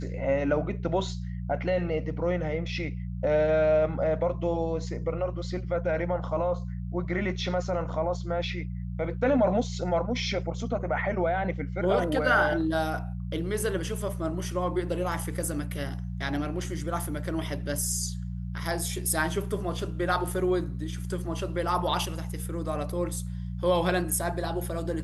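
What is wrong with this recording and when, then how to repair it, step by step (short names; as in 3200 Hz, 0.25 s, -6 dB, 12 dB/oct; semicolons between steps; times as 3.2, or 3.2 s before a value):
hum 60 Hz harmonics 3 -34 dBFS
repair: de-hum 60 Hz, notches 3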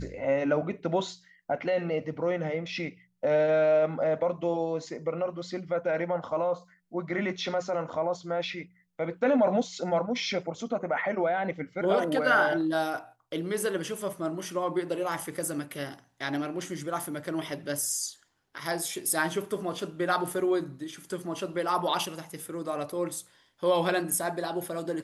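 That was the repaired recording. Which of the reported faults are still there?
none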